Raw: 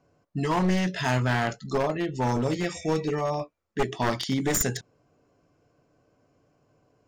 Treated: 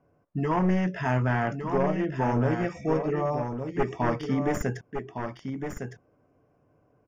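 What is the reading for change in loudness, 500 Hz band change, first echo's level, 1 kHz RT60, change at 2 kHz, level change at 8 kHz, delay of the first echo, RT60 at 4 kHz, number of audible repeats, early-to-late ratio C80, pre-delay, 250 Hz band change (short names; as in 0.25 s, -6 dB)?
-1.0 dB, +0.5 dB, -7.0 dB, none, -2.5 dB, -16.0 dB, 1.159 s, none, 1, none, none, +1.0 dB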